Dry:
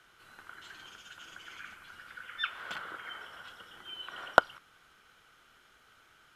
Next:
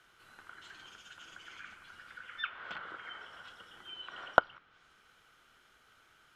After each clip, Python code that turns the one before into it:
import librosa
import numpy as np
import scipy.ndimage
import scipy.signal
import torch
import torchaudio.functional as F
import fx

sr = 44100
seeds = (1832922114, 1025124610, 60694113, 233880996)

y = fx.env_lowpass_down(x, sr, base_hz=3000.0, full_db=-35.5)
y = F.gain(torch.from_numpy(y), -2.5).numpy()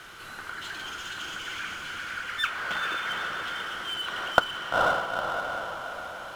y = fx.echo_diffused(x, sr, ms=465, feedback_pct=43, wet_db=-3.5)
y = fx.power_curve(y, sr, exponent=0.7)
y = F.gain(torch.from_numpy(y), 1.5).numpy()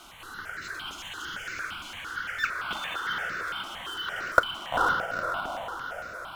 y = fx.phaser_held(x, sr, hz=8.8, low_hz=470.0, high_hz=3200.0)
y = F.gain(torch.from_numpy(y), 2.0).numpy()